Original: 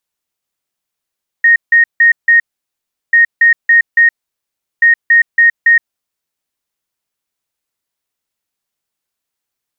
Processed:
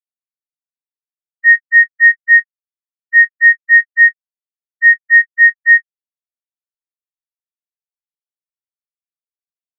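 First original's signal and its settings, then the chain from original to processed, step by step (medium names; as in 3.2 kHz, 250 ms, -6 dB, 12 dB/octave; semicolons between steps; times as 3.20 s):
beep pattern sine 1.86 kHz, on 0.12 s, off 0.16 s, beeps 4, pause 0.73 s, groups 3, -4 dBFS
on a send: early reflections 23 ms -13.5 dB, 38 ms -16.5 dB; on the sum: loudness maximiser +10.5 dB; spectral contrast expander 4:1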